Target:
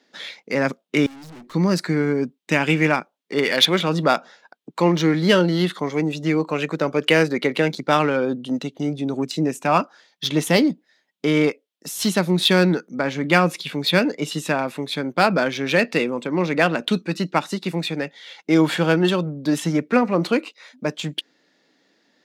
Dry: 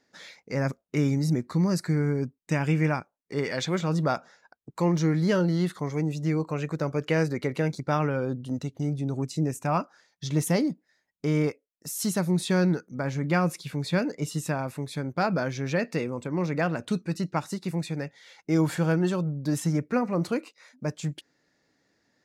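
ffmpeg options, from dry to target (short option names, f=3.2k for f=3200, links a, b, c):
-filter_complex "[0:a]highpass=f=190:w=0.5412,highpass=f=190:w=1.3066,equalizer=f=3.3k:w=1.3:g=13.5,asplit=2[a][b];[b]adynamicsmooth=sensitivity=3.5:basefreq=1.8k,volume=0dB[c];[a][c]amix=inputs=2:normalize=0,asettb=1/sr,asplit=3[d][e][f];[d]atrim=end=1.064[g];[e]atrim=start=1.06:end=1.54,asetpts=PTS-STARTPTS,afade=t=in:d=0.004:c=qsin,afade=t=out:st=0.476:d=0.004:c=qsin,aeval=exprs='(tanh(126*val(0)+0.2)-tanh(0.2))/126':c=same[h];[f]atrim=start=1.536[i];[g][h]acrossfade=d=0.004:c1=hsin:c2=qsin[j];[j][i]acrossfade=d=0.004:c1=qsin:c2=hsin,volume=2dB"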